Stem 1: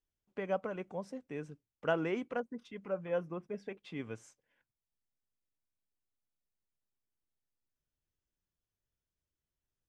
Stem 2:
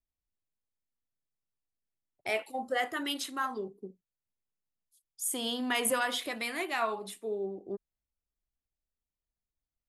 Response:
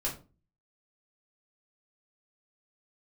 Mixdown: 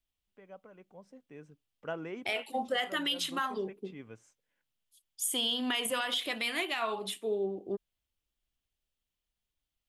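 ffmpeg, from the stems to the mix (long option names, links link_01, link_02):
-filter_complex "[0:a]dynaudnorm=framelen=330:gausssize=7:maxgain=12dB,volume=-18dB[link_01];[1:a]equalizer=frequency=3100:width_type=o:width=0.65:gain=10.5,volume=2.5dB[link_02];[link_01][link_02]amix=inputs=2:normalize=0,alimiter=limit=-21.5dB:level=0:latency=1:release=235"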